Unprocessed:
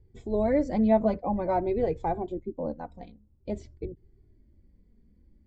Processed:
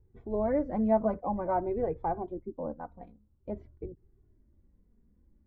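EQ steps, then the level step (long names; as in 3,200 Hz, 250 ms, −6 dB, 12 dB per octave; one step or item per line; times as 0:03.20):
low-pass with resonance 1,300 Hz, resonance Q 2
−5.0 dB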